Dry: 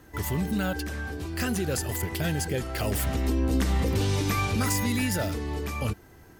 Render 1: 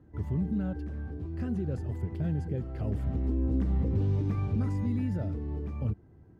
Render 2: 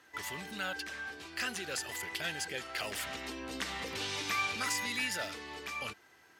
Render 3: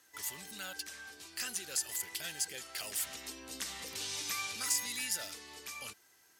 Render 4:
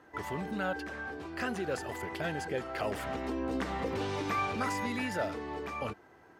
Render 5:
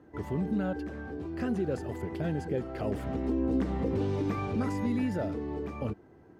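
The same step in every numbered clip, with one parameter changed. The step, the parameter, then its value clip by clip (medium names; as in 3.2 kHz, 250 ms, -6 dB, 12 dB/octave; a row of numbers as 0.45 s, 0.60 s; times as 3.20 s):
band-pass filter, frequency: 120 Hz, 2.8 kHz, 7.1 kHz, 920 Hz, 340 Hz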